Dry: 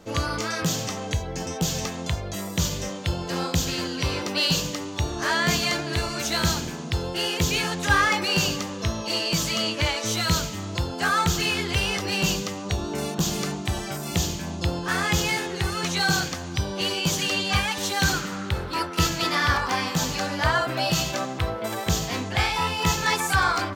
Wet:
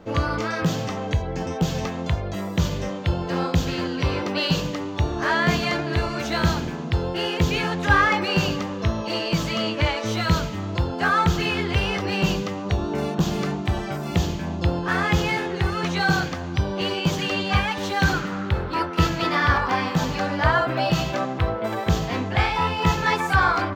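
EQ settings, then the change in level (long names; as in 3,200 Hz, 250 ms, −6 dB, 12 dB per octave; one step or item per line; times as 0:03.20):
high-shelf EQ 3,800 Hz −7 dB
parametric band 9,700 Hz −12 dB 1.7 octaves
+4.0 dB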